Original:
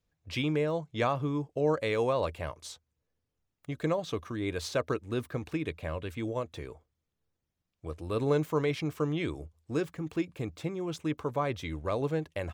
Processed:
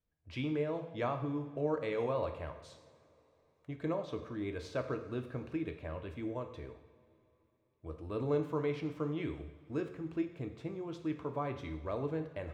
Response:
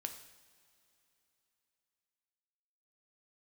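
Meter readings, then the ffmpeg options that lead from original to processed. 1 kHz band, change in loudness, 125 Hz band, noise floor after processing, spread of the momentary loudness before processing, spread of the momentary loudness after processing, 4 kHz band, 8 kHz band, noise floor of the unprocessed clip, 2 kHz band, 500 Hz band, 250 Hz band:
−6.5 dB, −5.5 dB, −6.5 dB, −74 dBFS, 12 LU, 12 LU, −11.5 dB, below −15 dB, −84 dBFS, −8.5 dB, −5.5 dB, −4.5 dB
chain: -filter_complex "[0:a]aemphasis=mode=reproduction:type=75kf[link_01];[1:a]atrim=start_sample=2205[link_02];[link_01][link_02]afir=irnorm=-1:irlink=0,volume=-3.5dB"

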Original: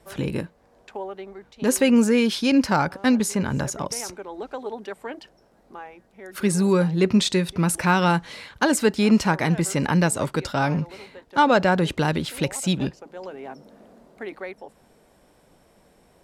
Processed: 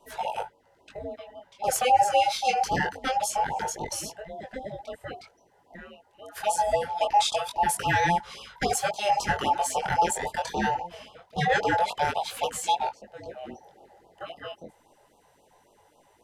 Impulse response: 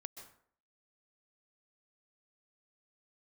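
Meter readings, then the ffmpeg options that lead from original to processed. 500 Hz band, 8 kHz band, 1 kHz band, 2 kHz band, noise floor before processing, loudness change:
−5.5 dB, −3.0 dB, +3.0 dB, −3.5 dB, −59 dBFS, −4.5 dB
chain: -filter_complex "[0:a]afftfilt=real='real(if(between(b,1,1008),(2*floor((b-1)/48)+1)*48-b,b),0)':imag='imag(if(between(b,1,1008),(2*floor((b-1)/48)+1)*48-b,b),0)*if(between(b,1,1008),-1,1)':win_size=2048:overlap=0.75,acrossover=split=530[link_01][link_02];[link_01]asoftclip=type=tanh:threshold=-23.5dB[link_03];[link_03][link_02]amix=inputs=2:normalize=0,flanger=delay=18.5:depth=5.4:speed=0.24,afftfilt=real='re*(1-between(b*sr/1024,230*pow(1900/230,0.5+0.5*sin(2*PI*3.7*pts/sr))/1.41,230*pow(1900/230,0.5+0.5*sin(2*PI*3.7*pts/sr))*1.41))':imag='im*(1-between(b*sr/1024,230*pow(1900/230,0.5+0.5*sin(2*PI*3.7*pts/sr))/1.41,230*pow(1900/230,0.5+0.5*sin(2*PI*3.7*pts/sr))*1.41))':win_size=1024:overlap=0.75"

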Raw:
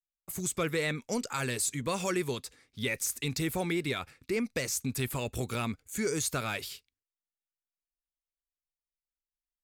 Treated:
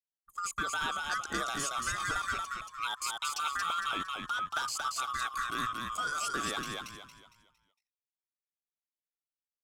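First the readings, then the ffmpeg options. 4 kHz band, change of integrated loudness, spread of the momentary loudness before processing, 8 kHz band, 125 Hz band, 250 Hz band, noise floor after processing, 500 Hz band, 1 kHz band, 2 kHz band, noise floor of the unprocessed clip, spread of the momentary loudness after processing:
+2.0 dB, −1.0 dB, 6 LU, −4.0 dB, −14.5 dB, −12.0 dB, below −85 dBFS, −13.0 dB, +7.5 dB, +2.5 dB, below −85 dBFS, 7 LU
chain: -filter_complex "[0:a]afftfilt=real='real(if(lt(b,960),b+48*(1-2*mod(floor(b/48),2)),b),0)':imag='imag(if(lt(b,960),b+48*(1-2*mod(floor(b/48),2)),b),0)':win_size=2048:overlap=0.75,acrossover=split=7200[link_01][link_02];[link_02]acompressor=threshold=-44dB:ratio=4:attack=1:release=60[link_03];[link_01][link_03]amix=inputs=2:normalize=0,anlmdn=0.631,acompressor=threshold=-31dB:ratio=6,asplit=2[link_04][link_05];[link_05]asplit=5[link_06][link_07][link_08][link_09][link_10];[link_06]adelay=229,afreqshift=-50,volume=-3dB[link_11];[link_07]adelay=458,afreqshift=-100,volume=-12.1dB[link_12];[link_08]adelay=687,afreqshift=-150,volume=-21.2dB[link_13];[link_09]adelay=916,afreqshift=-200,volume=-30.4dB[link_14];[link_10]adelay=1145,afreqshift=-250,volume=-39.5dB[link_15];[link_11][link_12][link_13][link_14][link_15]amix=inputs=5:normalize=0[link_16];[link_04][link_16]amix=inputs=2:normalize=0"

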